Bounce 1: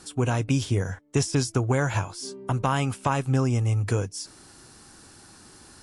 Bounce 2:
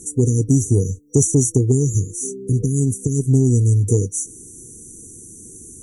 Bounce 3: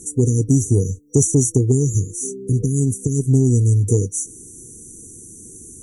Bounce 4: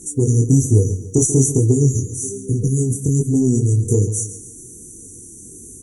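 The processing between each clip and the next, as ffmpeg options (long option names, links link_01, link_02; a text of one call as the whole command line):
ffmpeg -i in.wav -af "afftfilt=real='re*(1-between(b*sr/4096,490,5800))':imag='im*(1-between(b*sr/4096,490,5800))':win_size=4096:overlap=0.75,highshelf=frequency=4300:gain=6.5,acontrast=74,volume=2dB" out.wav
ffmpeg -i in.wav -af anull out.wav
ffmpeg -i in.wav -filter_complex "[0:a]acrusher=bits=11:mix=0:aa=0.000001,asplit=2[link_01][link_02];[link_02]aecho=0:1:138|276|414|552:0.224|0.094|0.0395|0.0166[link_03];[link_01][link_03]amix=inputs=2:normalize=0,flanger=delay=18.5:depth=6.2:speed=1.2,volume=4dB" out.wav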